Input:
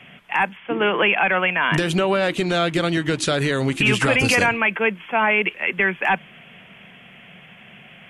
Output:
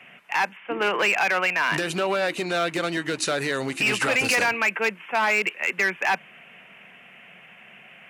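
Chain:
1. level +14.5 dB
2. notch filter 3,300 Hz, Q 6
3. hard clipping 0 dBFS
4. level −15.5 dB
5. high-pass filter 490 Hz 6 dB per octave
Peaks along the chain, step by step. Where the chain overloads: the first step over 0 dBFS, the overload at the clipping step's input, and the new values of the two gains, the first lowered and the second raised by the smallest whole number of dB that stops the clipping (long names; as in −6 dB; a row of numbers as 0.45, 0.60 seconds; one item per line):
+7.5, +7.5, 0.0, −15.5, −11.5 dBFS
step 1, 7.5 dB
step 1 +6.5 dB, step 4 −7.5 dB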